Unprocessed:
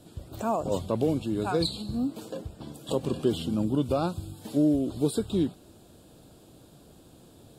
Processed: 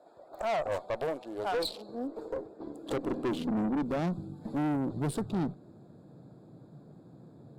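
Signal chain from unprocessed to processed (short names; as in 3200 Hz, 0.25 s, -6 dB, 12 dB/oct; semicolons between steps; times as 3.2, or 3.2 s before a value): Wiener smoothing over 15 samples; high-pass sweep 650 Hz -> 140 Hz, 1.22–4.8; tube stage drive 27 dB, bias 0.45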